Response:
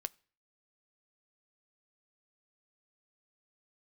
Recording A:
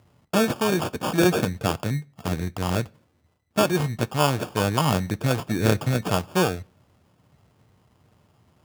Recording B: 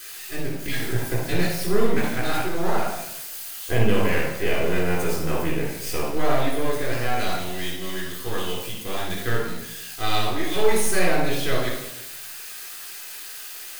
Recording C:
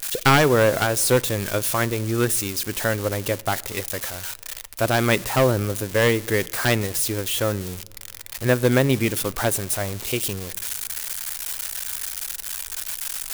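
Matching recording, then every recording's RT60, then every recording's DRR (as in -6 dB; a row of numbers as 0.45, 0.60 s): A; not exponential, 0.85 s, not exponential; 12.5, -7.5, 17.5 dB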